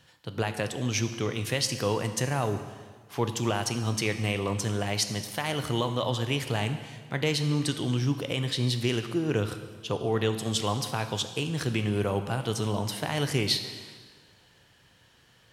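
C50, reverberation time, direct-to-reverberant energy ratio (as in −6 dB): 10.0 dB, 1.6 s, 8.0 dB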